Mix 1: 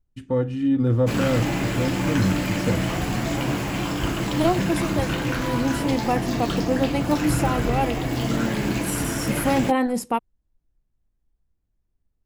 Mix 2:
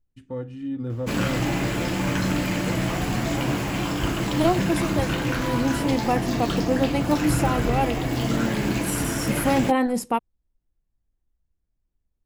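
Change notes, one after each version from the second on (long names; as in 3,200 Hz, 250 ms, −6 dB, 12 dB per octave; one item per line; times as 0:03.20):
first voice −9.5 dB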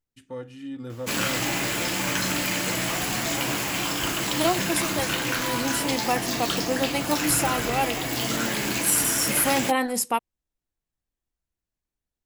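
master: add spectral tilt +3 dB per octave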